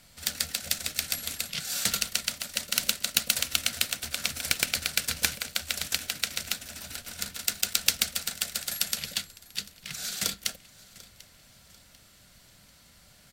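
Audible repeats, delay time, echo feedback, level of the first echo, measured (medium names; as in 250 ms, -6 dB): 2, 743 ms, 39%, -21.0 dB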